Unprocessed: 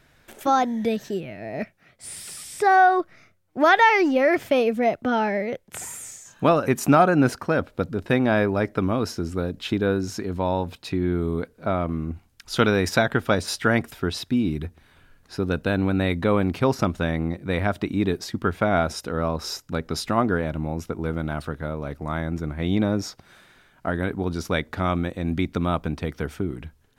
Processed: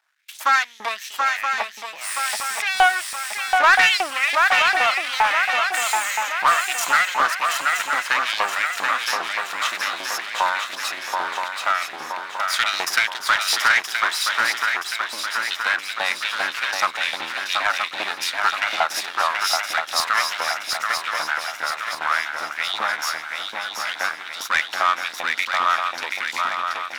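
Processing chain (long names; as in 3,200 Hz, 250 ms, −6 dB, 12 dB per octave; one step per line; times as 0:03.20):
turntable brake at the end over 0.82 s
parametric band 6,000 Hz +3 dB
noise gate with hold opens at −42 dBFS
half-wave rectification
parametric band 460 Hz −6 dB 0.61 octaves
in parallel at +2 dB: downward compressor, threshold −32 dBFS, peak gain reduction 18 dB
on the sum: auto-filter high-pass saw up 2.5 Hz 820–4,400 Hz
on a send: feedback echo with a long and a short gap by turns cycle 973 ms, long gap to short 3 to 1, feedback 53%, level −5 dB
on the sum: soft clipping −13 dBFS, distortion −16 dB
highs frequency-modulated by the lows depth 0.14 ms
level +5 dB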